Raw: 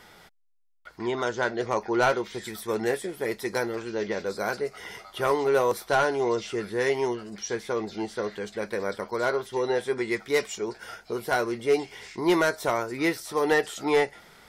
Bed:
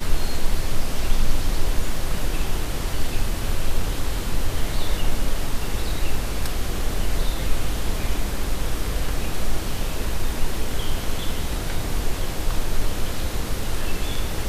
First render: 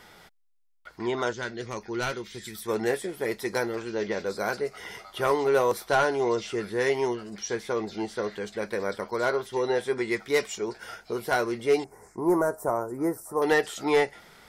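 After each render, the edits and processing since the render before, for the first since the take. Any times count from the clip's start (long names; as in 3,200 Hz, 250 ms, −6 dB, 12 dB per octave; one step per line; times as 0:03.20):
0:01.33–0:02.65: parametric band 730 Hz −12.5 dB 2 octaves
0:11.84–0:13.42: Chebyshev band-stop filter 990–9,200 Hz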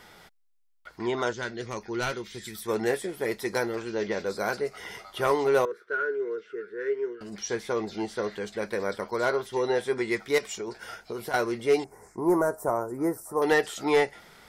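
0:05.65–0:07.21: pair of resonant band-passes 800 Hz, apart 1.8 octaves
0:10.38–0:11.34: downward compressor, threshold −30 dBFS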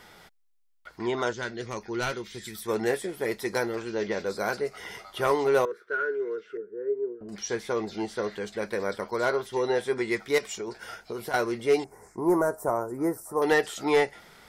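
0:06.57–0:07.29: Chebyshev low-pass filter 530 Hz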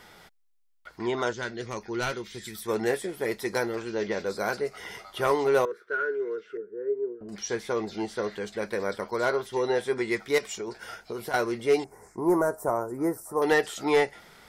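no processing that can be heard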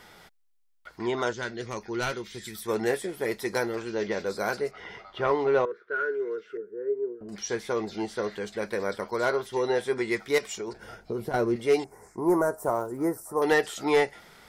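0:04.71–0:05.96: high-frequency loss of the air 200 metres
0:10.73–0:11.56: tilt shelving filter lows +8 dB, about 650 Hz
0:12.61–0:13.07: one scale factor per block 7 bits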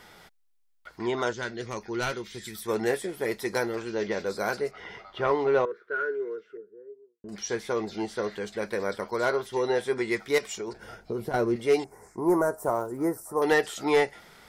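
0:05.86–0:07.24: fade out and dull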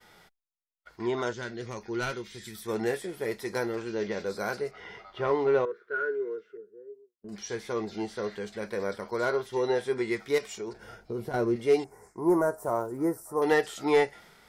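downward expander −49 dBFS
harmonic and percussive parts rebalanced percussive −6 dB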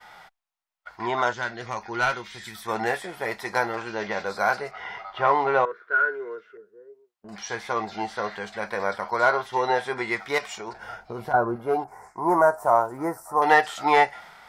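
0:11.32–0:11.88: gain on a spectral selection 1,700–9,800 Hz −18 dB
drawn EQ curve 160 Hz 0 dB, 430 Hz −3 dB, 750 Hz +14 dB, 10,000 Hz 0 dB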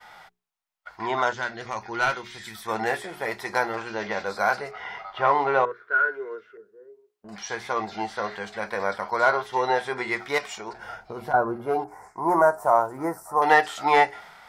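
mains-hum notches 60/120/180/240/300/360/420 Hz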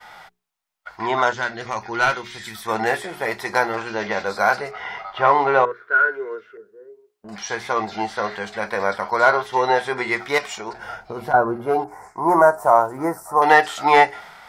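level +5 dB
brickwall limiter −1 dBFS, peak gain reduction 1.5 dB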